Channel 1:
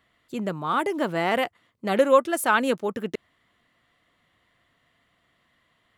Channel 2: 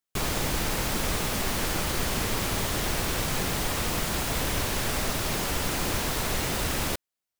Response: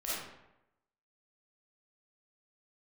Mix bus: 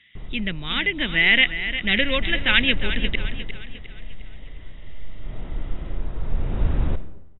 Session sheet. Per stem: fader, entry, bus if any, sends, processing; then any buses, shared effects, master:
+1.5 dB, 0.00 s, no send, echo send -11 dB, FFT filter 220 Hz 0 dB, 590 Hz -13 dB, 1.2 kHz -14 dB, 2 kHz +14 dB
1.62 s -17 dB -> 2.20 s -6.5 dB -> 3.23 s -6.5 dB -> 3.58 s -18 dB -> 5.07 s -18 dB -> 5.31 s -7 dB, 0.00 s, send -14 dB, no echo send, tilt EQ -4.5 dB/octave; auto duck -18 dB, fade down 0.55 s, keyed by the first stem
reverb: on, RT60 0.90 s, pre-delay 10 ms
echo: feedback delay 354 ms, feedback 44%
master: brick-wall FIR low-pass 3.9 kHz

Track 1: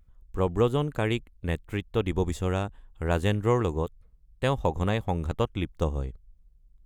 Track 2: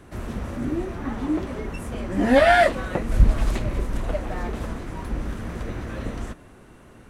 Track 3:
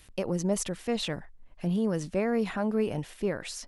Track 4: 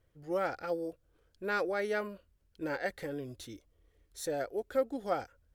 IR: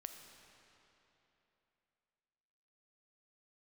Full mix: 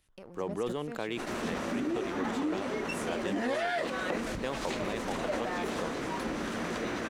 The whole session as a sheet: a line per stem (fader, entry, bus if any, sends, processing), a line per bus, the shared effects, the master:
-7.5 dB, 0.00 s, bus A, no send, treble shelf 8.6 kHz +9 dB
-0.5 dB, 1.15 s, bus A, no send, treble shelf 3.8 kHz +10 dB; compression, threshold -21 dBFS, peak gain reduction 12 dB
-16.0 dB, 0.00 s, bus B, no send, none
-16.5 dB, 1.45 s, bus B, no send, none
bus A: 0.0 dB, three-band isolator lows -24 dB, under 190 Hz, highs -15 dB, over 6.7 kHz; compression 4:1, threshold -34 dBFS, peak gain reduction 12 dB
bus B: 0.0 dB, compression 6:1, threshold -51 dBFS, peak gain reduction 13 dB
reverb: none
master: waveshaping leveller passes 1; decay stretcher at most 36 dB/s

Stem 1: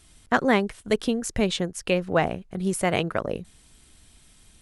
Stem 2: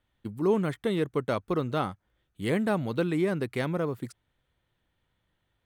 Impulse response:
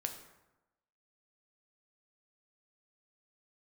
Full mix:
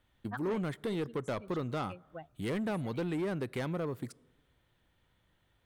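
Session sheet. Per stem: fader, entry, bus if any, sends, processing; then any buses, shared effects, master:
-5.0 dB, 0.00 s, no send, expander on every frequency bin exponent 3; auto duck -12 dB, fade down 1.25 s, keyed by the second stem
+3.0 dB, 0.00 s, send -20 dB, none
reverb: on, RT60 1.0 s, pre-delay 3 ms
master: saturation -20.5 dBFS, distortion -13 dB; compression 1.5:1, threshold -46 dBFS, peak gain reduction 8.5 dB

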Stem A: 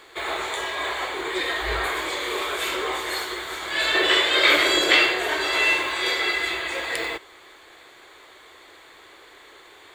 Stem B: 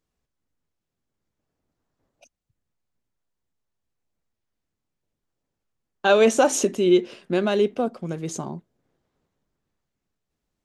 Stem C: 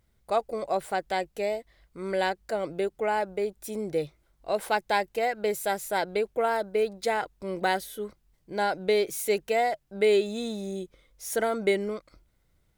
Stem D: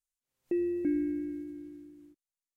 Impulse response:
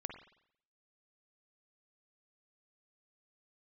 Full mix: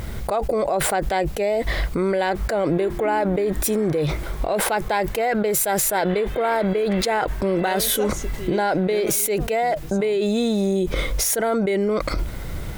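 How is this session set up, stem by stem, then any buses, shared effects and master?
-16.0 dB, 2.00 s, no send, low-pass 1.9 kHz 12 dB/octave
-12.5 dB, 1.60 s, no send, none
-1.0 dB, 0.00 s, no send, low-pass 2.5 kHz 6 dB/octave; level flattener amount 100%
-4.0 dB, 2.20 s, no send, none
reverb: none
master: treble shelf 9.2 kHz +12 dB; peak limiter -11.5 dBFS, peak gain reduction 9 dB

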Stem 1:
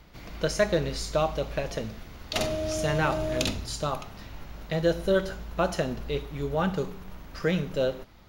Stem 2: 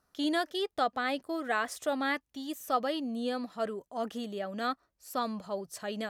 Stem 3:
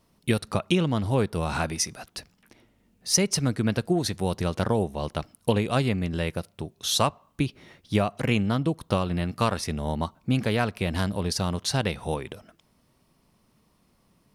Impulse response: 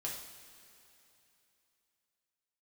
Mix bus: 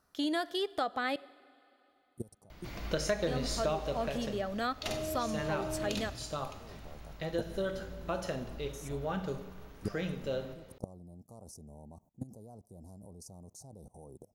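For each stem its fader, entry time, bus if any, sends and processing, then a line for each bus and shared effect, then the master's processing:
3.61 s -2.5 dB -> 4.33 s -10.5 dB, 2.50 s, send -5 dB, none
+1.0 dB, 0.00 s, muted 1.16–3.27 s, send -17.5 dB, none
-8.5 dB, 1.90 s, no send, Chebyshev band-stop 780–6400 Hz, order 3; treble shelf 3.6 kHz +4.5 dB; level held to a coarse grid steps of 21 dB; auto duck -21 dB, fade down 1.35 s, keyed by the second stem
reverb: on, pre-delay 3 ms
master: compression 3:1, threshold -30 dBFS, peak gain reduction 10 dB

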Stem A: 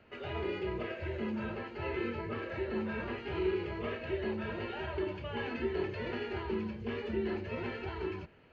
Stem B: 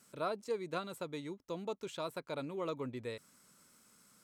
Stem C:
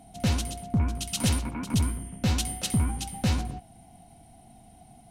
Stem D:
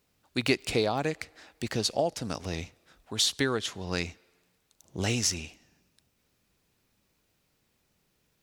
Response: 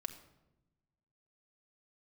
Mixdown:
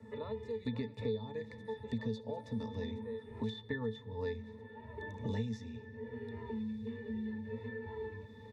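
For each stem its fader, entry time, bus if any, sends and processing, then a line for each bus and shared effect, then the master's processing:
-16.0 dB, 0.00 s, send -5 dB, none
+1.0 dB, 0.00 s, no send, steep high-pass 160 Hz; tremolo saw up 0.83 Hz, depth 75%
-17.5 dB, 1.20 s, no send, elliptic high-pass 520 Hz; treble shelf 6.3 kHz +9 dB
-0.5 dB, 0.30 s, send -3.5 dB, none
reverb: on, RT60 1.0 s, pre-delay 4 ms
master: pitch-class resonator A, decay 0.15 s; three bands compressed up and down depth 100%

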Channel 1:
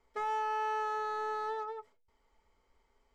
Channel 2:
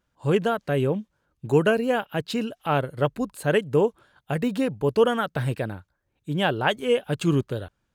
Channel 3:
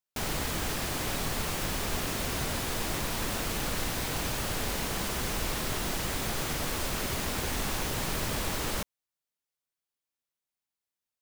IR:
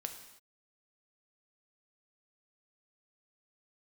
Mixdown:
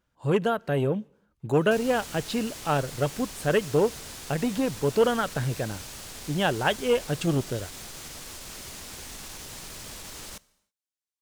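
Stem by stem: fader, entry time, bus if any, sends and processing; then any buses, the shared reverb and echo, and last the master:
-1.0 dB, 1.40 s, no send, compressor with a negative ratio -41 dBFS, ratio -1; integer overflow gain 41 dB; auto duck -11 dB, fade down 1.95 s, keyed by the second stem
-1.5 dB, 0.00 s, send -20.5 dB, none
-14.0 dB, 1.55 s, send -12 dB, peaking EQ 7 kHz +9.5 dB 2.3 oct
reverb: on, pre-delay 3 ms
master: transformer saturation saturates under 460 Hz

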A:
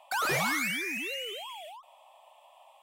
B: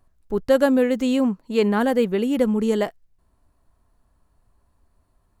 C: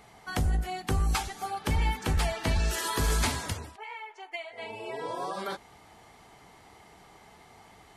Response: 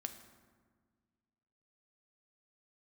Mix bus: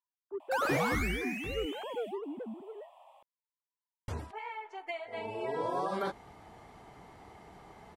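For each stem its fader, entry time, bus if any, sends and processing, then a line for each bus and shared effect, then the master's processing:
0.0 dB, 0.40 s, send -14 dB, none
2.14 s -14 dB -> 2.64 s -22 dB, 0.00 s, no send, formants replaced by sine waves; saturation -16.5 dBFS, distortion -9 dB
+3.0 dB, 0.55 s, muted 1.66–4.08 s, no send, auto duck -23 dB, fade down 1.85 s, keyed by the second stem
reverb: on, RT60 1.6 s, pre-delay 4 ms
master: treble shelf 2 kHz -11.5 dB

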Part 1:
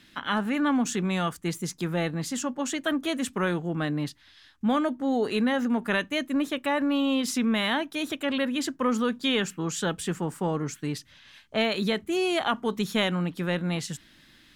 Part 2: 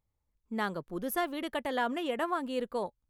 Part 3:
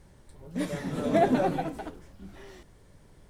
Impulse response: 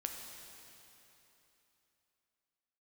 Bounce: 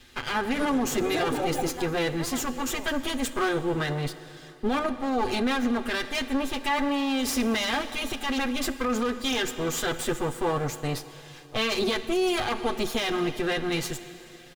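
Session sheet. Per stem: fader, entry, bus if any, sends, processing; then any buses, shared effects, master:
+0.5 dB, 0.00 s, send -5.5 dB, comb filter that takes the minimum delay 8.1 ms; comb 2.5 ms, depth 34%
-10.0 dB, 0.00 s, no send, none
-2.0 dB, 0.00 s, no send, random-step tremolo; comb 2.4 ms, depth 90%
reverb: on, RT60 3.3 s, pre-delay 5 ms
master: peak limiter -17 dBFS, peak gain reduction 8 dB

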